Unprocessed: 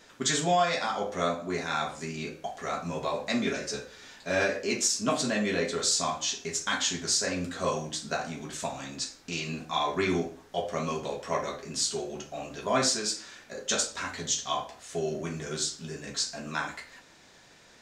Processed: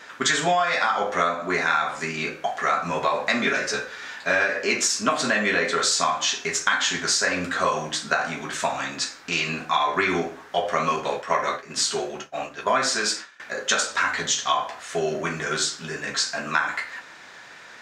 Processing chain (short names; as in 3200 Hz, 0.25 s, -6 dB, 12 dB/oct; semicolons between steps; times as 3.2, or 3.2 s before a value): 10.96–13.4 expander -34 dBFS; HPF 120 Hz 6 dB/oct; bell 1500 Hz +13 dB 2.1 oct; compressor 10:1, threshold -21 dBFS, peak gain reduction 10 dB; gain +3.5 dB